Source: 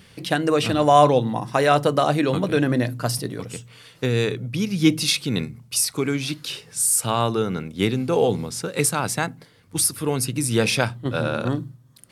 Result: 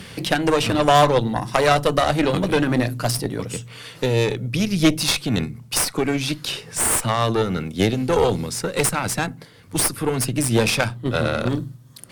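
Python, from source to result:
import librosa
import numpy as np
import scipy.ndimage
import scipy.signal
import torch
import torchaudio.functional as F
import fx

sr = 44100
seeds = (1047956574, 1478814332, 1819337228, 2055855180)

y = fx.cheby_harmonics(x, sr, harmonics=(6,), levels_db=(-16,), full_scale_db=-2.5)
y = fx.band_squash(y, sr, depth_pct=40)
y = y * 10.0 ** (1.5 / 20.0)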